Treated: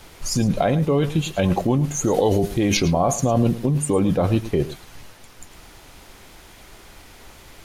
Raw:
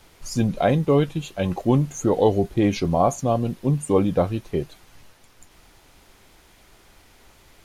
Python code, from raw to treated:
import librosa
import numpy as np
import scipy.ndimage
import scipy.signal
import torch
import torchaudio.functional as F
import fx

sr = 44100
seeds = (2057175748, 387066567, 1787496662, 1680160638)

p1 = fx.high_shelf(x, sr, hz=3500.0, db=8.5, at=(2.04, 2.77))
p2 = fx.over_compress(p1, sr, threshold_db=-24.0, ratio=-0.5)
p3 = p1 + (p2 * librosa.db_to_amplitude(3.0))
p4 = p3 + 10.0 ** (-15.0 / 20.0) * np.pad(p3, (int(108 * sr / 1000.0), 0))[:len(p3)]
y = p4 * librosa.db_to_amplitude(-3.0)